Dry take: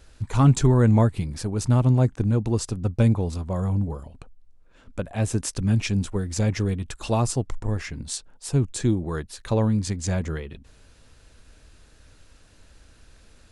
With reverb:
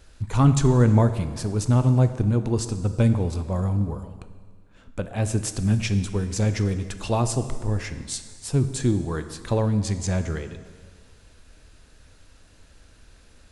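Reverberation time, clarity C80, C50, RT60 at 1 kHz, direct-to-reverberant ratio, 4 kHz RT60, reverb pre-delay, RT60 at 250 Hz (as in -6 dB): 1.8 s, 12.0 dB, 11.0 dB, 1.8 s, 9.5 dB, 1.7 s, 6 ms, 1.9 s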